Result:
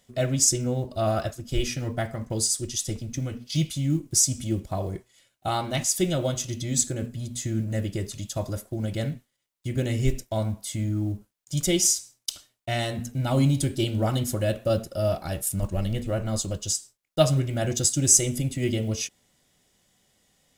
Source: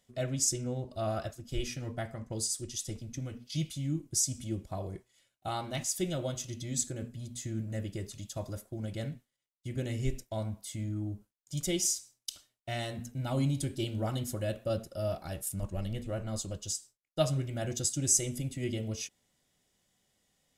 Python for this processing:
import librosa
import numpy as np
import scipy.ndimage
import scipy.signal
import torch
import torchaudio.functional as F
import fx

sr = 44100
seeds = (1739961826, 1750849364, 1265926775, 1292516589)

y = fx.block_float(x, sr, bits=7)
y = y * 10.0 ** (8.5 / 20.0)